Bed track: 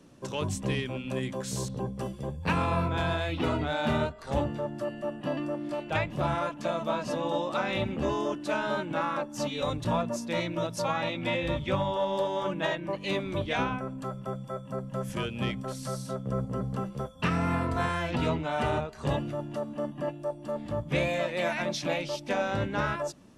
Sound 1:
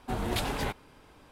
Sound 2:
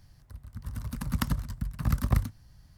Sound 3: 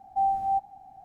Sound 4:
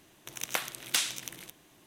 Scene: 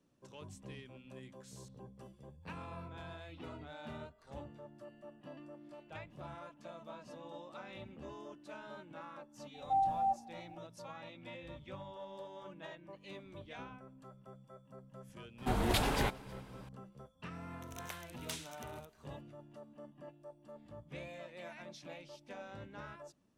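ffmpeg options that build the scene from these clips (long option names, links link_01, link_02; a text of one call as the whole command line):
ffmpeg -i bed.wav -i cue0.wav -i cue1.wav -i cue2.wav -i cue3.wav -filter_complex "[0:a]volume=-19.5dB[link_01];[1:a]aecho=1:1:316:0.0708[link_02];[3:a]atrim=end=1.04,asetpts=PTS-STARTPTS,volume=-6.5dB,afade=type=in:duration=0.004:curve=hsin,afade=type=out:start_time=1.036:duration=0.004:curve=hsin,adelay=420714S[link_03];[link_02]atrim=end=1.31,asetpts=PTS-STARTPTS,volume=-0.5dB,afade=type=in:duration=0.004:curve=hsin,afade=type=out:start_time=1.306:duration=0.004:curve=hsin,adelay=15380[link_04];[4:a]atrim=end=1.86,asetpts=PTS-STARTPTS,volume=-16dB,afade=type=in:duration=0.004:curve=hsin,afade=type=out:start_time=1.856:duration=0.004:curve=hsin,adelay=17350[link_05];[link_01][link_03][link_04][link_05]amix=inputs=4:normalize=0" out.wav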